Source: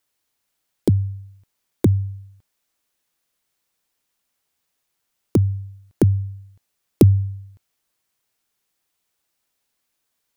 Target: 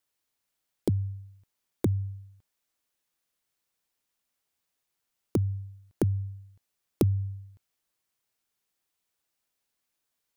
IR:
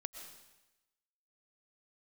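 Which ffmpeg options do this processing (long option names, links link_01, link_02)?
-af "acompressor=threshold=-18dB:ratio=2,volume=-6.5dB"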